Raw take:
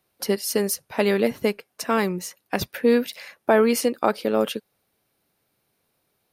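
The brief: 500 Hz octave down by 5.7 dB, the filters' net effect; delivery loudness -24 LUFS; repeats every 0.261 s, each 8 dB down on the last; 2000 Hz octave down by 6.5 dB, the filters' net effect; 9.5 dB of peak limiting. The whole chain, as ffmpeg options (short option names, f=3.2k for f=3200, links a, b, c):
-af "equalizer=f=500:t=o:g=-6.5,equalizer=f=2k:t=o:g=-8,alimiter=limit=-17.5dB:level=0:latency=1,aecho=1:1:261|522|783|1044|1305:0.398|0.159|0.0637|0.0255|0.0102,volume=5dB"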